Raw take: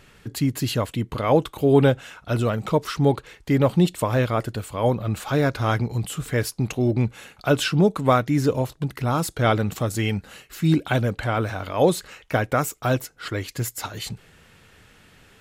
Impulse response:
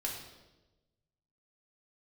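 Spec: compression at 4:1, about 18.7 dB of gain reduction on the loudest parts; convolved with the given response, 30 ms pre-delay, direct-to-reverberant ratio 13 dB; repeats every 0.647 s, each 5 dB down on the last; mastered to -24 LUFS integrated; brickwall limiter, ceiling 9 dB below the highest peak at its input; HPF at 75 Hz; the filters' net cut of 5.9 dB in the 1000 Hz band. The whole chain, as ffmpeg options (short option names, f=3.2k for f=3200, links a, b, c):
-filter_complex "[0:a]highpass=75,equalizer=f=1k:t=o:g=-8.5,acompressor=threshold=-37dB:ratio=4,alimiter=level_in=6dB:limit=-24dB:level=0:latency=1,volume=-6dB,aecho=1:1:647|1294|1941|2588|3235|3882|4529:0.562|0.315|0.176|0.0988|0.0553|0.031|0.0173,asplit=2[a][b];[1:a]atrim=start_sample=2205,adelay=30[c];[b][c]afir=irnorm=-1:irlink=0,volume=-15dB[d];[a][d]amix=inputs=2:normalize=0,volume=16dB"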